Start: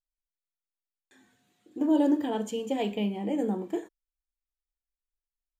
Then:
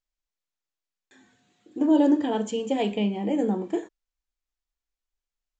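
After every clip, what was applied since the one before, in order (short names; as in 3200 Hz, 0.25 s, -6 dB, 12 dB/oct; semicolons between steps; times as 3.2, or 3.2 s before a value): steep low-pass 7800 Hz 72 dB/oct; gain +4 dB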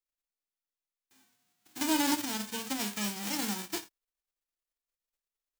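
spectral whitening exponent 0.1; gain -9 dB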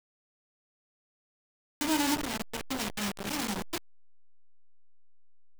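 level-crossing sampler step -28 dBFS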